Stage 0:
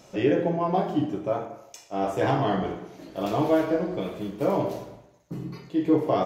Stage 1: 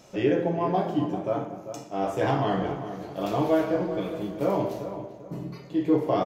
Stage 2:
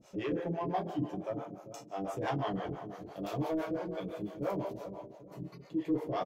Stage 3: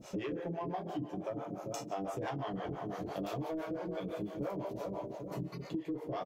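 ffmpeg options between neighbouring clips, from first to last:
ffmpeg -i in.wav -filter_complex "[0:a]asplit=2[link_01][link_02];[link_02]adelay=394,lowpass=frequency=1900:poles=1,volume=-10dB,asplit=2[link_03][link_04];[link_04]adelay=394,lowpass=frequency=1900:poles=1,volume=0.34,asplit=2[link_05][link_06];[link_06]adelay=394,lowpass=frequency=1900:poles=1,volume=0.34,asplit=2[link_07][link_08];[link_08]adelay=394,lowpass=frequency=1900:poles=1,volume=0.34[link_09];[link_01][link_03][link_05][link_07][link_09]amix=inputs=5:normalize=0,volume=-1dB" out.wav
ffmpeg -i in.wav -filter_complex "[0:a]asoftclip=type=tanh:threshold=-16.5dB,acrossover=split=450[link_01][link_02];[link_01]aeval=exprs='val(0)*(1-1/2+1/2*cos(2*PI*5.9*n/s))':channel_layout=same[link_03];[link_02]aeval=exprs='val(0)*(1-1/2-1/2*cos(2*PI*5.9*n/s))':channel_layout=same[link_04];[link_03][link_04]amix=inputs=2:normalize=0,volume=-3.5dB" out.wav
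ffmpeg -i in.wav -af "acompressor=threshold=-44dB:ratio=12,volume=9dB" out.wav

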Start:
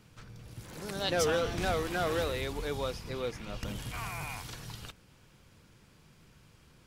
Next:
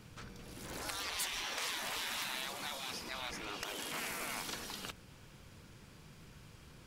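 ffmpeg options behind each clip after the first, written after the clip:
ffmpeg -i in.wav -af "afftfilt=real='re*lt(hypot(re,im),0.0282)':imag='im*lt(hypot(re,im),0.0282)':win_size=1024:overlap=0.75,volume=3.5dB" out.wav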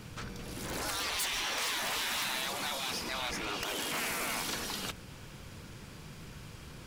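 ffmpeg -i in.wav -af "asoftclip=type=tanh:threshold=-37dB,volume=8.5dB" out.wav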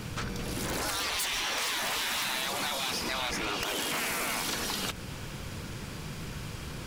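ffmpeg -i in.wav -af "acompressor=threshold=-38dB:ratio=6,volume=8.5dB" out.wav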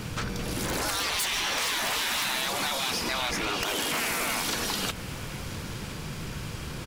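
ffmpeg -i in.wav -af "aecho=1:1:1017:0.119,volume=3dB" out.wav

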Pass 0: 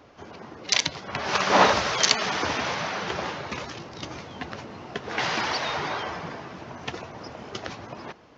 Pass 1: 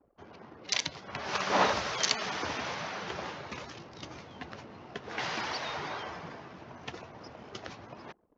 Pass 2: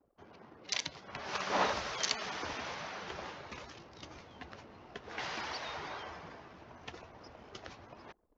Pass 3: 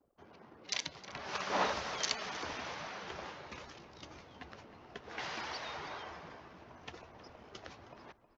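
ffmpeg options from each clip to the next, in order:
ffmpeg -i in.wav -af "anlmdn=0.0158,volume=-8dB" out.wav
ffmpeg -i in.wav -af "asubboost=boost=5.5:cutoff=55,volume=-5dB" out.wav
ffmpeg -i in.wav -filter_complex "[0:a]bandreject=frequency=50:width_type=h:width=6,bandreject=frequency=100:width_type=h:width=6,asplit=2[link_01][link_02];[link_02]adelay=314.9,volume=-14dB,highshelf=frequency=4000:gain=-7.08[link_03];[link_01][link_03]amix=inputs=2:normalize=0,volume=-1.5dB" out.wav

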